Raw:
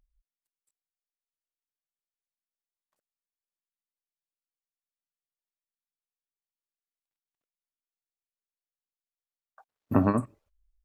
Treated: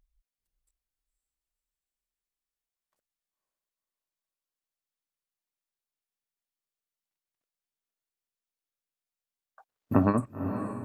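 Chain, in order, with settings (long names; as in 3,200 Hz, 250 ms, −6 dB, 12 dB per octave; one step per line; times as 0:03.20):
feedback delay with all-pass diffusion 523 ms, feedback 53%, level −8 dB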